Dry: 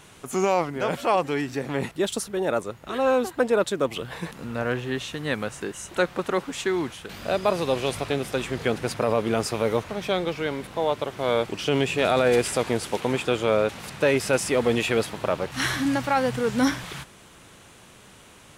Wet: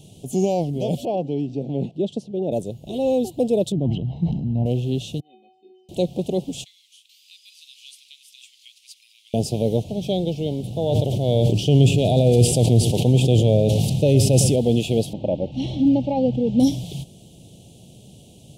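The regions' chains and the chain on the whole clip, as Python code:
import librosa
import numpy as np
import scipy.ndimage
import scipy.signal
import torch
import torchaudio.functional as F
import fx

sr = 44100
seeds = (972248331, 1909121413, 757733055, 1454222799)

y = fx.chain(x, sr, fx.highpass(hz=160.0, slope=12),
    fx.spacing_loss(db_at_10k=26), at=(1.05, 2.52))
y = fx.chain(y, sr, fx.spacing_loss(db_at_10k=41),
    fx.comb(ms=1.0, depth=0.68),
    fx.sustainer(db_per_s=53.0), at=(3.72, 4.66))
y = fx.chain(y, sr, fx.cabinet(low_hz=220.0, low_slope=24, high_hz=3100.0, hz=(230.0, 400.0, 700.0, 2700.0), db=(8, -4, 3, 3)),
    fx.stiff_resonator(f0_hz=370.0, decay_s=0.68, stiffness=0.008), at=(5.2, 5.89))
y = fx.chain(y, sr, fx.cheby_ripple_highpass(hz=1500.0, ripple_db=3),
    fx.high_shelf(hz=2100.0, db=-8.0), at=(6.64, 9.34))
y = fx.chain(y, sr, fx.peak_eq(hz=110.0, db=8.5, octaves=0.63),
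    fx.echo_single(ms=108, db=-16.0),
    fx.sustainer(db_per_s=30.0), at=(10.63, 14.56))
y = fx.chain(y, sr, fx.lowpass(hz=2400.0, slope=12),
    fx.comb(ms=3.6, depth=0.47), at=(15.13, 16.6))
y = scipy.signal.sosfilt(scipy.signal.ellip(3, 1.0, 80, [710.0, 3000.0], 'bandstop', fs=sr, output='sos'), y)
y = fx.peak_eq(y, sr, hz=140.0, db=11.5, octaves=1.8)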